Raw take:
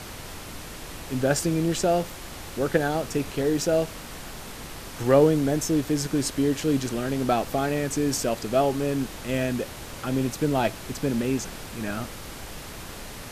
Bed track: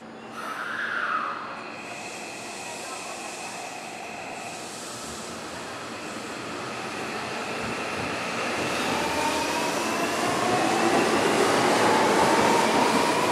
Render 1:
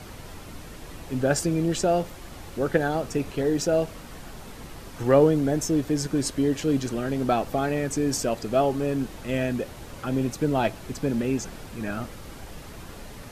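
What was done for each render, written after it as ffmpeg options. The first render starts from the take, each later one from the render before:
-af "afftdn=nr=7:nf=-39"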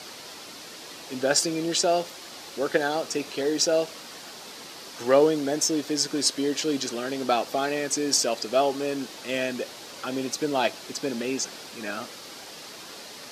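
-af "highpass=320,equalizer=f=4.7k:t=o:w=1.3:g=11"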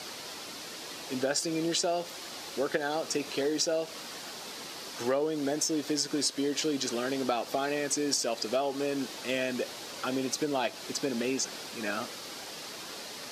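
-af "acompressor=threshold=-26dB:ratio=6"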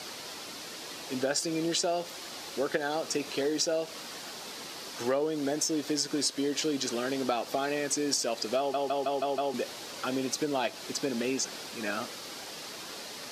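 -filter_complex "[0:a]asplit=7[a][b][c][d][e][f][g];[a]atrim=end=8.742[h];[b]atrim=start=8.578:end=8.742[i];[c]atrim=start=8.578:end=8.742[j];[d]atrim=start=8.578:end=8.742[k];[e]atrim=start=8.578:end=8.742[l];[f]atrim=start=8.578:end=8.742[m];[g]atrim=start=9.538[n];[h][i]acrossfade=d=0.004:c1=hsin:c2=hsin[o];[o][j]acrossfade=d=0.004:c1=hsin:c2=hsin[p];[p][k]acrossfade=d=0.004:c1=hsin:c2=hsin[q];[q][l]acrossfade=d=0.004:c1=hsin:c2=hsin[r];[r][m]acrossfade=d=0.004:c1=hsin:c2=hsin[s];[s][n]acrossfade=d=0.004:c1=hsin:c2=hsin"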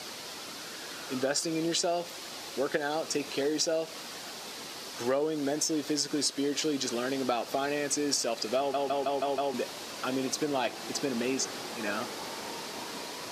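-filter_complex "[1:a]volume=-21.5dB[a];[0:a][a]amix=inputs=2:normalize=0"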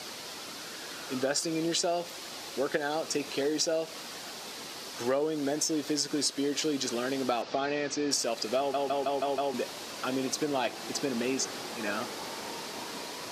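-filter_complex "[0:a]asettb=1/sr,asplit=3[a][b][c];[a]atrim=end=7.424[d];[b]atrim=start=7.42:end=8.11,asetpts=PTS-STARTPTS,afade=t=in:d=0.004:c=qsin,afade=t=out:st=0.686:d=0.004:c=qsin,lowpass=f=5.5k:w=0.5412,lowpass=f=5.5k:w=1.3066[e];[c]atrim=start=8.106[f];[d][e]acrossfade=d=0.004:c1=hsin:c2=qsin[g];[g][f]acrossfade=d=0.004:c1=qsin:c2=hsin"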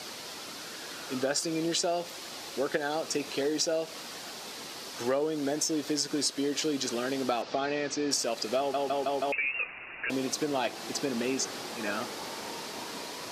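-filter_complex "[0:a]asettb=1/sr,asplit=3[a][b][c];[a]atrim=end=9.324[d];[b]atrim=start=9.32:end=10.1,asetpts=PTS-STARTPTS,afade=t=in:d=0.004:c=qsin,afade=t=out:st=0.776:d=0.004:c=qsin,lowpass=f=2.6k:t=q:w=0.5098,lowpass=f=2.6k:t=q:w=0.6013,lowpass=f=2.6k:t=q:w=0.9,lowpass=f=2.6k:t=q:w=2.563,afreqshift=-3000[e];[c]atrim=start=10.096[f];[d][e]acrossfade=d=0.004:c1=hsin:c2=qsin[g];[g][f]acrossfade=d=0.004:c1=qsin:c2=hsin"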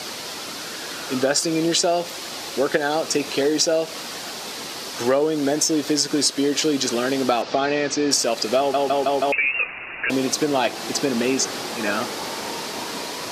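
-af "volume=9.5dB"

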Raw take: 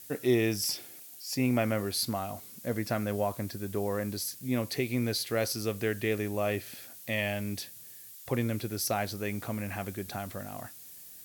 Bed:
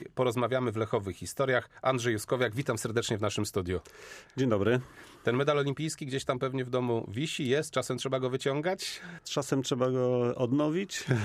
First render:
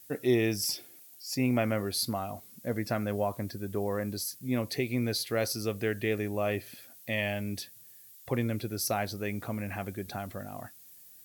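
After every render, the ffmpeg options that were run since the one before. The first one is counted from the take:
-af "afftdn=nr=7:nf=-49"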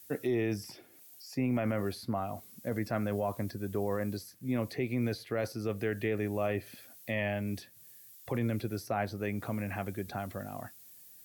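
-filter_complex "[0:a]acrossover=split=180|1700|2100[a][b][c][d];[d]acompressor=threshold=-49dB:ratio=6[e];[a][b][c][e]amix=inputs=4:normalize=0,alimiter=limit=-22dB:level=0:latency=1:release=12"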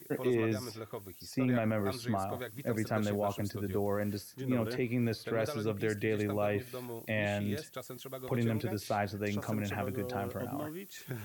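-filter_complex "[1:a]volume=-13dB[a];[0:a][a]amix=inputs=2:normalize=0"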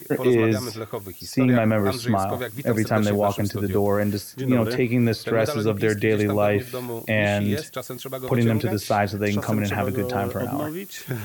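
-af "volume=11.5dB"

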